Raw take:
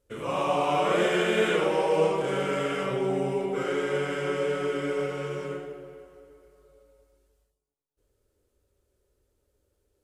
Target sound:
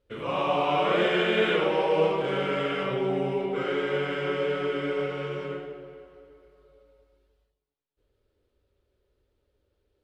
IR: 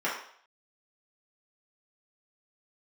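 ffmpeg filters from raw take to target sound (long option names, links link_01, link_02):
-af "highshelf=frequency=5300:width_type=q:width=1.5:gain=-12"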